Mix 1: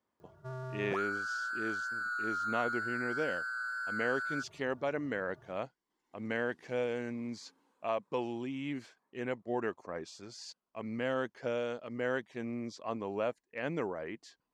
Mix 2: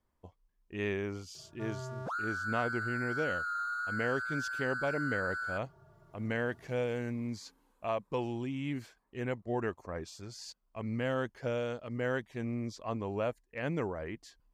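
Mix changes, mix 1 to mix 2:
speech: remove band-pass filter 200–7,700 Hz
background: entry +1.15 s

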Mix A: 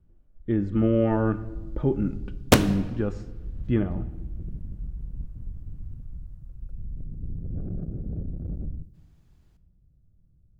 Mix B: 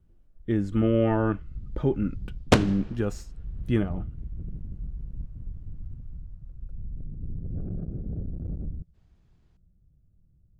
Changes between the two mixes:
speech: remove head-to-tape spacing loss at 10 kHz 21 dB
second sound: add high-frequency loss of the air 67 metres
reverb: off

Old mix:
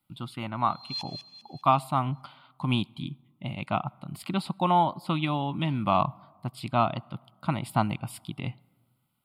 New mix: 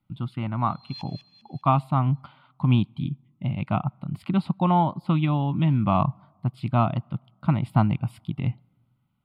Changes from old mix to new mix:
speech: send −6.0 dB
master: add bass and treble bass +10 dB, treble −14 dB

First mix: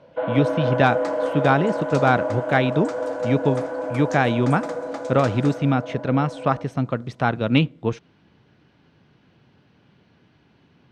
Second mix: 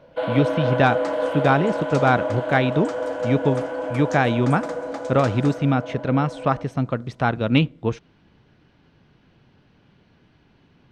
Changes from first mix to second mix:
first sound: remove low-pass filter 1,800 Hz 12 dB per octave
master: remove high-pass filter 79 Hz

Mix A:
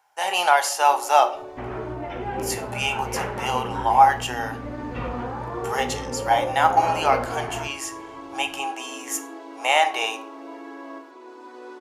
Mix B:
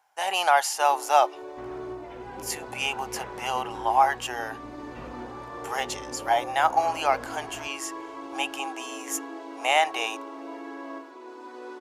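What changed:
second sound −10.5 dB
reverb: off

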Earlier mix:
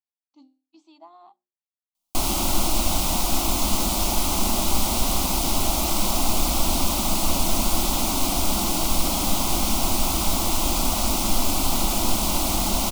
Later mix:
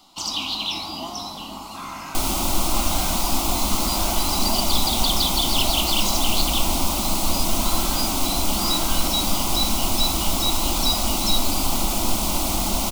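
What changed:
speech +11.0 dB
first sound: unmuted

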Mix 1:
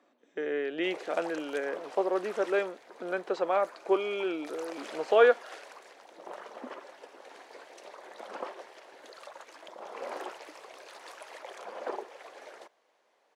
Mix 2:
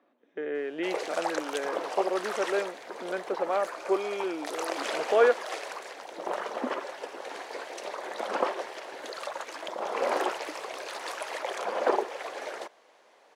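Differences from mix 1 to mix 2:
speech: add high-frequency loss of the air 220 metres
background +11.0 dB

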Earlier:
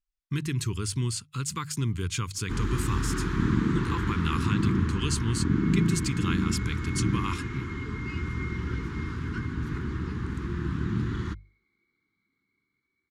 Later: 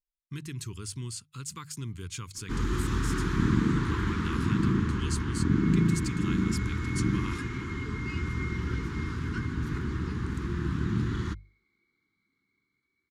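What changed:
speech −9.0 dB
master: add bass and treble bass 0 dB, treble +4 dB

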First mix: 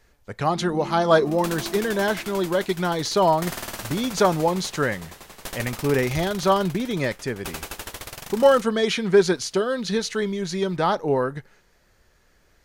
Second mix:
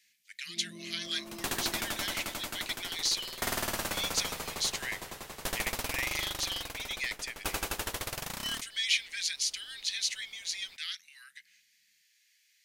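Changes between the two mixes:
speech: add Butterworth high-pass 2,000 Hz 48 dB per octave
first sound −11.5 dB

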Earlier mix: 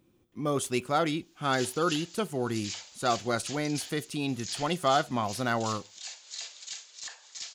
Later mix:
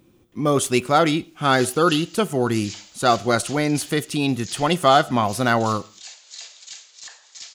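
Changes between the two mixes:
speech +9.5 dB
reverb: on, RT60 0.40 s

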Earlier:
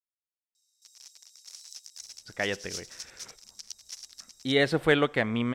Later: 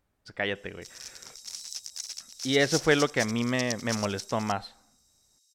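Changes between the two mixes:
speech: entry −2.00 s
background +7.0 dB

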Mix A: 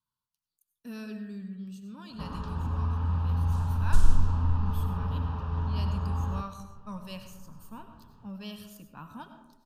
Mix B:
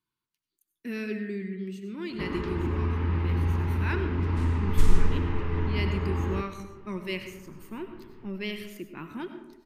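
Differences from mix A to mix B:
second sound: entry +0.85 s
master: remove phaser with its sweep stopped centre 870 Hz, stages 4

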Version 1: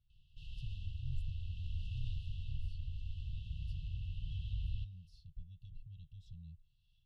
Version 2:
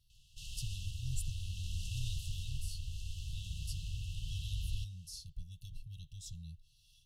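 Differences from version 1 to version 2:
speech +3.5 dB
master: remove high-frequency loss of the air 410 metres

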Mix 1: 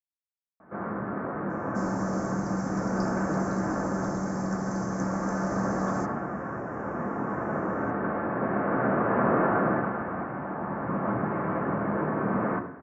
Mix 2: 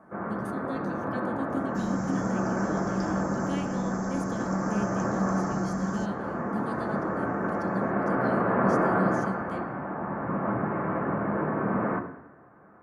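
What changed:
speech: unmuted
first sound: entry −0.60 s

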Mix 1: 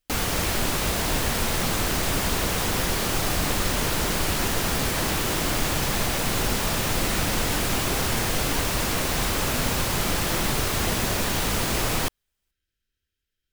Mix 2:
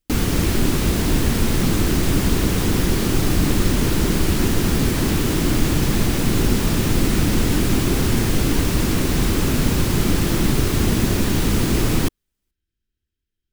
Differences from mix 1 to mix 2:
speech −5.5 dB
master: add low shelf with overshoot 450 Hz +9 dB, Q 1.5

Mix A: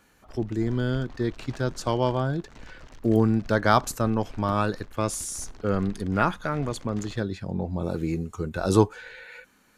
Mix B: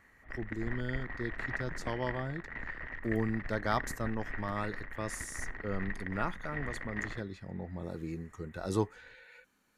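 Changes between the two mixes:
speech −11.5 dB
background: add low-pass with resonance 1,900 Hz, resonance Q 15

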